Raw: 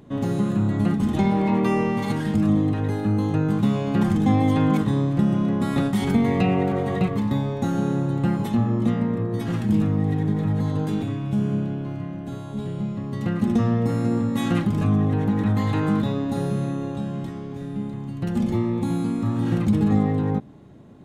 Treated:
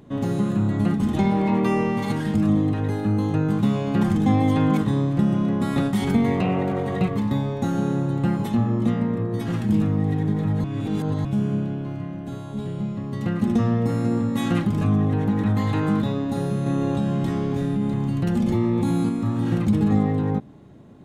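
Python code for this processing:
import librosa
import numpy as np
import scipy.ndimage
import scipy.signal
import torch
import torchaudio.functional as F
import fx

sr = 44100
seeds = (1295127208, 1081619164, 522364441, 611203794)

y = fx.transformer_sat(x, sr, knee_hz=410.0, at=(6.35, 6.99))
y = fx.env_flatten(y, sr, amount_pct=70, at=(16.66, 19.09))
y = fx.edit(y, sr, fx.reverse_span(start_s=10.64, length_s=0.61), tone=tone)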